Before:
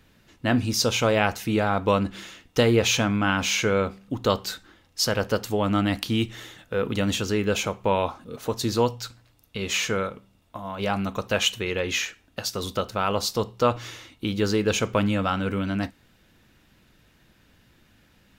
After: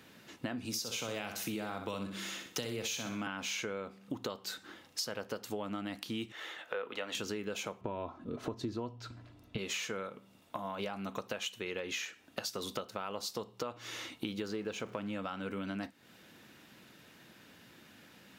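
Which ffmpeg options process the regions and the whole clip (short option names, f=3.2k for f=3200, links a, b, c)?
-filter_complex "[0:a]asettb=1/sr,asplit=3[a][b][c];[a]atrim=end=0.654[d];[b]atrim=start=0.65:end=3.27,asetpts=PTS-STARTPTS,afade=t=in:d=0.004:c=qsin,afade=t=out:st=2.616:d=0.004:c=qsin,highshelf=f=5.6k:g=6,acrossover=split=180|3000[e][f][g];[f]acompressor=threshold=-28dB:ratio=2.5:attack=3.2:release=140:knee=2.83:detection=peak[h];[e][h][g]amix=inputs=3:normalize=0,aecho=1:1:62|124|186|248:0.398|0.139|0.0488|0.0171,atrim=end_sample=115542[i];[c]atrim=start=3.266[j];[d][i]acrossfade=d=0.004:c1=hsin:c2=qsin[k];[k][j]acrossfade=d=0.004:c1=qsin:c2=hsin,asettb=1/sr,asplit=3[l][m][n];[l]atrim=end=6.324[o];[m]atrim=start=6.32:end=7.15,asetpts=PTS-STARTPTS,afade=t=in:d=0.004:c=qsin,afade=t=out:st=0.826:d=0.004:c=qsin,acrossover=split=440 3600:gain=0.0891 1 0.224[p][q][r];[p][q][r]amix=inputs=3:normalize=0,asplit=2[s][t];[t]adelay=22,volume=-13.5dB[u];[s][u]amix=inputs=2:normalize=0,atrim=end_sample=36603,acompressor=mode=upward:threshold=-48dB:ratio=2.5:attack=3.2:release=140:knee=2.83:detection=peak[v];[n]atrim=start=7.146[w];[o][v]acrossfade=d=0.004:c1=hsin:c2=qsin[x];[x][w]acrossfade=d=0.004:c1=qsin:c2=hsin,asettb=1/sr,asplit=3[y][z][aa];[y]atrim=end=7.814[ab];[z]atrim=start=7.81:end=9.58,asetpts=PTS-STARTPTS,afade=t=in:d=0.004:c=qsin,afade=t=out:st=1.766:d=0.004:c=qsin,aemphasis=mode=reproduction:type=riaa,aecho=1:1:3:0.41,atrim=end_sample=78057[ac];[aa]atrim=start=9.576[ad];[ab][ac]acrossfade=d=0.004:c1=hsin:c2=qsin[ae];[ae][ad]acrossfade=d=0.004:c1=qsin:c2=hsin,asettb=1/sr,asplit=3[af][ag][ah];[af]atrim=end=14.484[ai];[ag]atrim=start=14.48:end=15.15,asetpts=PTS-STARTPTS,afade=t=in:d=0.004:c=qsin,afade=t=out:st=0.666:d=0.004:c=qsin,aeval=exprs='val(0)+0.5*0.0158*sgn(val(0))':c=same,highshelf=f=4.8k:g=-9[aj];[ah]atrim=start=15.146[ak];[ai][aj]acrossfade=d=0.004:c1=hsin:c2=qsin[al];[al][ak]acrossfade=d=0.004:c1=qsin:c2=hsin,highpass=180,alimiter=limit=-13.5dB:level=0:latency=1:release=349,acompressor=threshold=-40dB:ratio=6,volume=3.5dB"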